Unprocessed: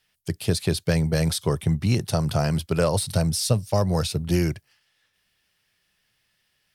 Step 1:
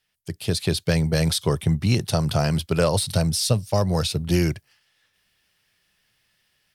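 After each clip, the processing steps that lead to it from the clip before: dynamic EQ 3500 Hz, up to +4 dB, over -42 dBFS, Q 1.2; AGC gain up to 7 dB; gain -4.5 dB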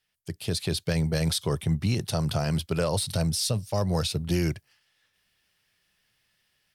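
limiter -12.5 dBFS, peak gain reduction 5 dB; gain -3.5 dB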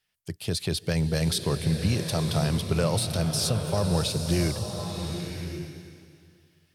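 bloom reverb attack 1.07 s, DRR 5 dB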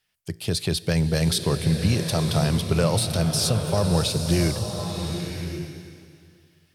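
resonator 56 Hz, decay 0.8 s, harmonics all, mix 30%; gain +6 dB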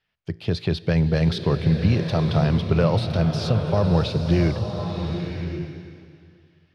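air absorption 260 m; gain +2.5 dB

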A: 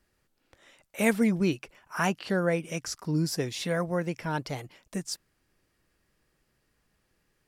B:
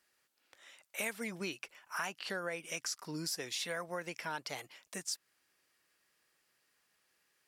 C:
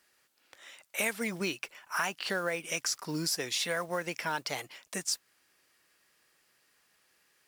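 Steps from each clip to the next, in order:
HPF 1400 Hz 6 dB/oct; compressor 5:1, threshold -37 dBFS, peak gain reduction 12 dB; gain +2 dB
modulation noise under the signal 23 dB; gain +6.5 dB

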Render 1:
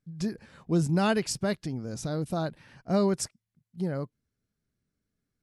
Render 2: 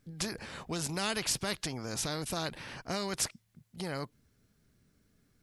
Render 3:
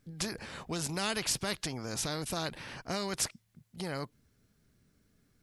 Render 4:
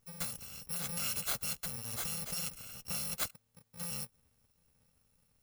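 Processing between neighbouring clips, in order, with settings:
dynamic EQ 4000 Hz, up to +4 dB, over -46 dBFS, Q 0.71; compressor 3:1, threshold -26 dBFS, peak gain reduction 5.5 dB; spectral compressor 2:1; gain +1.5 dB
nothing audible
FFT order left unsorted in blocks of 128 samples; gain -3 dB

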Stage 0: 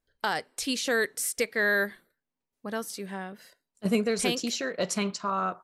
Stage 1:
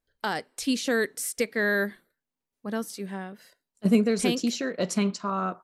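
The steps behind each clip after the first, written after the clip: dynamic EQ 240 Hz, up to +8 dB, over -43 dBFS, Q 0.93; gain -1.5 dB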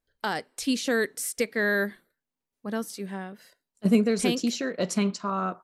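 nothing audible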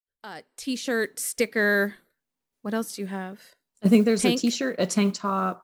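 opening faded in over 1.45 s; modulation noise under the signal 34 dB; gain +3 dB

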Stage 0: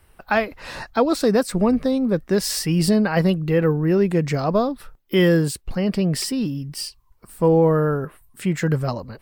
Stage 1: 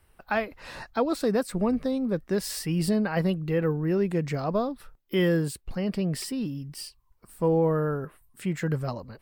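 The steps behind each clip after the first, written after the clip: dynamic EQ 5700 Hz, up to -4 dB, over -42 dBFS, Q 1.6; gain -7 dB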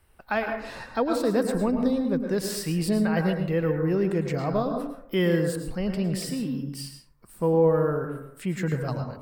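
plate-style reverb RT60 0.69 s, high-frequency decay 0.35×, pre-delay 95 ms, DRR 4.5 dB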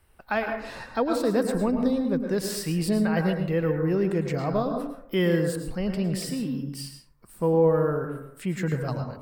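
nothing audible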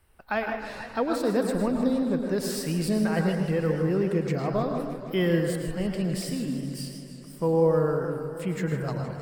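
warbling echo 0.156 s, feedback 77%, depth 140 cents, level -12 dB; gain -1.5 dB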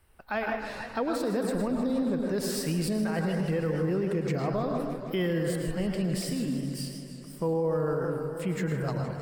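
limiter -20.5 dBFS, peak gain reduction 8.5 dB

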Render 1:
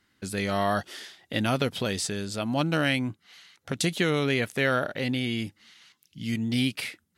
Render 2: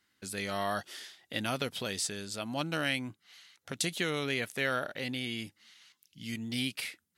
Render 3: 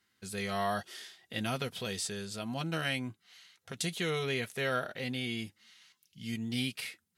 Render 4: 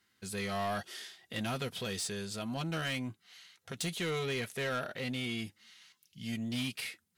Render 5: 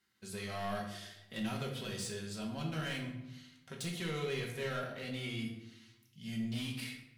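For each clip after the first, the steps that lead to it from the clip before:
tilt +1.5 dB/oct; gain -6.5 dB
harmonic-percussive split harmonic +5 dB; notch comb 290 Hz; gain -2.5 dB
soft clip -31 dBFS, distortion -13 dB; gain +1.5 dB
shoebox room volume 260 m³, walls mixed, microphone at 1.1 m; gain -7 dB

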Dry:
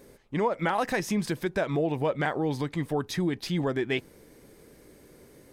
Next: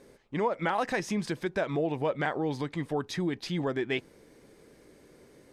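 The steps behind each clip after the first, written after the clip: Bessel low-pass 7500 Hz, order 2; low shelf 140 Hz -5.5 dB; gain -1.5 dB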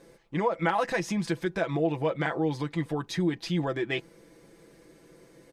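comb 6 ms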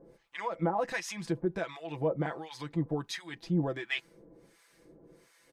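harmonic tremolo 1.4 Hz, depth 100%, crossover 950 Hz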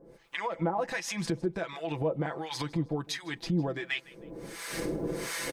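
recorder AGC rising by 37 dB/s; feedback echo 0.157 s, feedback 29%, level -21.5 dB

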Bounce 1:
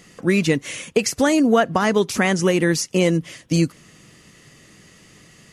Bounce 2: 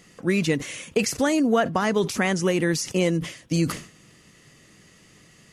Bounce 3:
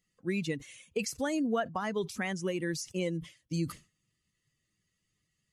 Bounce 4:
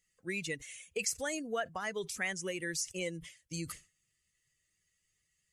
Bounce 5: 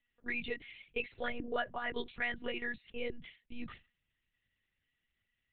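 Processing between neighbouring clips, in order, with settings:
sustainer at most 120 dB/s; gain -4.5 dB
per-bin expansion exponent 1.5; gain -8.5 dB
graphic EQ 125/250/1000/2000/4000/8000 Hz -6/-12/-7/+4/-3/+7 dB
monotone LPC vocoder at 8 kHz 240 Hz

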